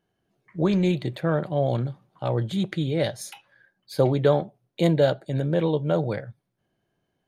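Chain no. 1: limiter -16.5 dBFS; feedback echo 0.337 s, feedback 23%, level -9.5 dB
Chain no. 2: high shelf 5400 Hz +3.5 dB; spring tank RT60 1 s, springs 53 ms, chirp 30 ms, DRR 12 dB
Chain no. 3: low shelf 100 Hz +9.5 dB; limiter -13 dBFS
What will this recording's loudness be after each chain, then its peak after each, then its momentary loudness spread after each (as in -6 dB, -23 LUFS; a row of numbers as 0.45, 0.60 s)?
-27.5, -24.5, -24.5 LUFS; -14.0, -7.5, -13.0 dBFS; 13, 13, 11 LU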